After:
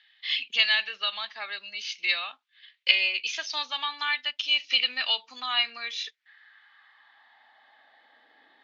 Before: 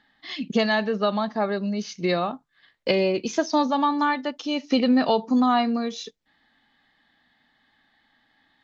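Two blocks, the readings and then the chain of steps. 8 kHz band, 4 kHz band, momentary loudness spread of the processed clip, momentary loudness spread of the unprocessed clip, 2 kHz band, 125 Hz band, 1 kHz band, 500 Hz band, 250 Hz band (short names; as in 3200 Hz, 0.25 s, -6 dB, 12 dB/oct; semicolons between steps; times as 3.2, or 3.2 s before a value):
n/a, +8.5 dB, 13 LU, 11 LU, +4.0 dB, under -40 dB, -12.0 dB, -22.5 dB, under -35 dB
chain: LPF 3900 Hz 12 dB/oct; high-pass sweep 2700 Hz -> 440 Hz, 5.58–8.35; gain +4.5 dB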